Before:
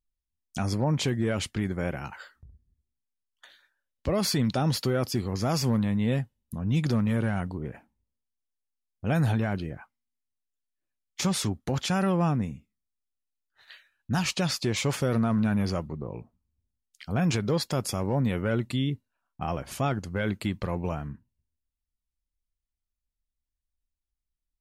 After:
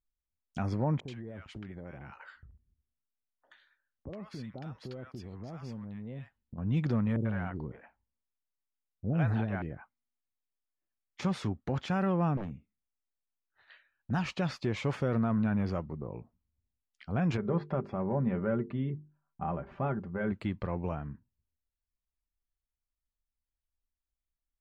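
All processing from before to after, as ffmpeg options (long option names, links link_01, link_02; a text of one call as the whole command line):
ffmpeg -i in.wav -filter_complex "[0:a]asettb=1/sr,asplit=3[link_01][link_02][link_03];[link_01]atrim=end=1.004[link_04];[link_02]atrim=start=1:end=6.58,asetpts=PTS-STARTPTS,afade=type=in:duration=0.004:curve=qsin,afade=type=out:start_time=5.576:duration=0.004:curve=qsin,acompressor=threshold=-35dB:ratio=6:attack=3.2:release=140:knee=1:detection=peak,acrossover=split=890[link_05][link_06];[link_06]adelay=80[link_07];[link_05][link_07]amix=inputs=2:normalize=0,atrim=end_sample=246078[link_08];[link_03]atrim=start=6.576[link_09];[link_04][link_08]acrossfade=duration=0.004:curve1=hsin:curve2=qsin[link_10];[link_10][link_09]acrossfade=duration=0.004:curve1=qsin:curve2=hsin,asettb=1/sr,asplit=3[link_11][link_12][link_13];[link_11]atrim=end=7.164[link_14];[link_12]atrim=start=7.16:end=9.62,asetpts=PTS-STARTPTS,afade=type=in:duration=0.004:curve=qsin,afade=type=out:start_time=2.456:duration=0.004:curve=qsin,acrossover=split=550|5800[link_15][link_16][link_17];[link_17]adelay=50[link_18];[link_16]adelay=90[link_19];[link_15][link_19][link_18]amix=inputs=3:normalize=0,atrim=end_sample=108486,asoftclip=type=hard:threshold=-16.5dB,lowpass=8000[link_20];[link_13]atrim=start=9.616[link_21];[link_14][link_20]acrossfade=duration=0.004:curve1=hsin:curve2=qsin[link_22];[link_22][link_21]acrossfade=duration=0.004:curve1=qsin:curve2=hsin,asettb=1/sr,asplit=3[link_23][link_24][link_25];[link_23]atrim=end=12.374[link_26];[link_24]atrim=start=12.37:end=14.11,asetpts=PTS-STARTPTS,afade=type=in:duration=0.004:curve=qsin,afade=type=out:start_time=1.736:duration=0.004:curve=qsin,highshelf=frequency=8600:gain=-9.5,aeval=exprs='0.0422*(abs(mod(val(0)/0.0422+3,4)-2)-1)':channel_layout=same[link_27];[link_25]atrim=start=14.106[link_28];[link_26][link_27]acrossfade=duration=0.004:curve1=hsin:curve2=qsin[link_29];[link_29][link_28]acrossfade=duration=0.004:curve1=qsin:curve2=hsin,asettb=1/sr,asplit=3[link_30][link_31][link_32];[link_30]atrim=end=17.374[link_33];[link_31]atrim=start=17.37:end=20.32,asetpts=PTS-STARTPTS,afade=type=in:duration=0.004:curve=qsin,afade=type=out:start_time=2.946:duration=0.004:curve=qsin,lowpass=1600,bandreject=frequency=50:width_type=h:width=6,bandreject=frequency=100:width_type=h:width=6,bandreject=frequency=150:width_type=h:width=6,bandreject=frequency=200:width_type=h:width=6,bandreject=frequency=250:width_type=h:width=6,bandreject=frequency=300:width_type=h:width=6,bandreject=frequency=350:width_type=h:width=6,bandreject=frequency=400:width_type=h:width=6,bandreject=frequency=450:width_type=h:width=6,aecho=1:1:5.1:0.52,atrim=end_sample=130095[link_34];[link_32]atrim=start=20.316[link_35];[link_33][link_34]acrossfade=duration=0.004:curve1=hsin:curve2=qsin[link_36];[link_36][link_35]acrossfade=duration=0.004:curve1=qsin:curve2=hsin,lowpass=1900,aemphasis=mode=production:type=50kf,volume=-4dB" out.wav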